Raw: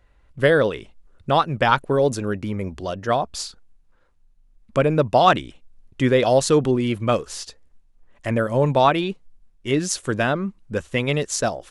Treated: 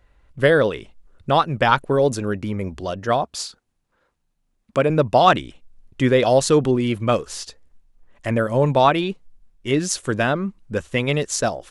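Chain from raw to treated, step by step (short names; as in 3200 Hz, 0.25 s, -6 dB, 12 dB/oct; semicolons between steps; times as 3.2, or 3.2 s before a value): 3.24–4.9 HPF 160 Hz 6 dB/oct; gain +1 dB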